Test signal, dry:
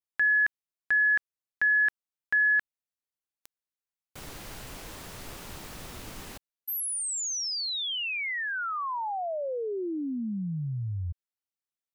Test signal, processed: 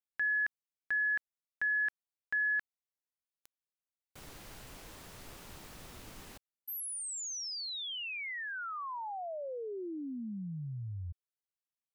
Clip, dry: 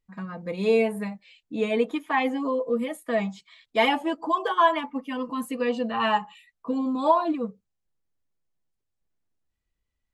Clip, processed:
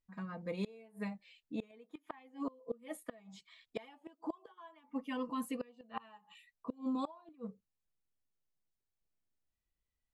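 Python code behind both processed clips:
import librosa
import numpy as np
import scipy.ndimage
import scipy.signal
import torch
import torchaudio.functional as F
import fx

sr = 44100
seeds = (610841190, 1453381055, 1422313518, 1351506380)

y = fx.gate_flip(x, sr, shuts_db=-19.0, range_db=-27)
y = F.gain(torch.from_numpy(y), -8.0).numpy()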